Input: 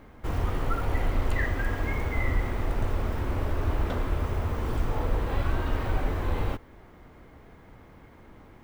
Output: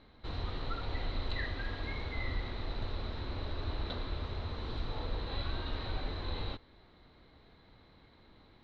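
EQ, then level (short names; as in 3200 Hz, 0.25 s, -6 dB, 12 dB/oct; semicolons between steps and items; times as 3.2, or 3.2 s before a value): ladder low-pass 4100 Hz, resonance 90%; +3.0 dB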